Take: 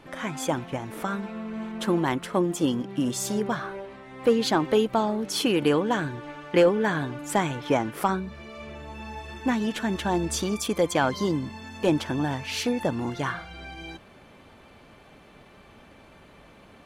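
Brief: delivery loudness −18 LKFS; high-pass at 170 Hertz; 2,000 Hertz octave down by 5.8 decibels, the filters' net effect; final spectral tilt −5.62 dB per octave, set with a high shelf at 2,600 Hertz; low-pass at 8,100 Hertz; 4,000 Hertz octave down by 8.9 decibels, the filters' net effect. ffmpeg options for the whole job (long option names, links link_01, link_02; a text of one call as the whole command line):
ffmpeg -i in.wav -af "highpass=170,lowpass=8100,equalizer=frequency=2000:width_type=o:gain=-4.5,highshelf=frequency=2600:gain=-4.5,equalizer=frequency=4000:width_type=o:gain=-6,volume=10dB" out.wav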